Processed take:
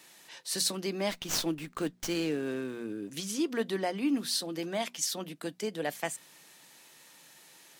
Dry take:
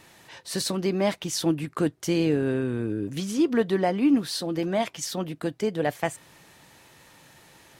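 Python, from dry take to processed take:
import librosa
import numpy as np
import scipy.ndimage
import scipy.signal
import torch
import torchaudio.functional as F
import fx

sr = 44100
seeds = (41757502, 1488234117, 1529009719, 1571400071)

y = scipy.signal.sosfilt(scipy.signal.butter(4, 160.0, 'highpass', fs=sr, output='sos'), x)
y = fx.high_shelf(y, sr, hz=2500.0, db=11.0)
y = fx.hum_notches(y, sr, base_hz=60, count=4)
y = fx.running_max(y, sr, window=3, at=(1.1, 3.1))
y = y * 10.0 ** (-8.5 / 20.0)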